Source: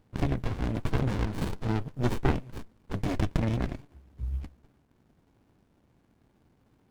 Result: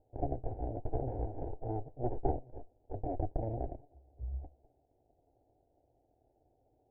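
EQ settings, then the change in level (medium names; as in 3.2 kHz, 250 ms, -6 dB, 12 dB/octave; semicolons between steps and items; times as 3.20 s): dynamic bell 620 Hz, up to -4 dB, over -46 dBFS, Q 2.2; four-pole ladder low-pass 800 Hz, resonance 70%; static phaser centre 470 Hz, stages 4; +6.0 dB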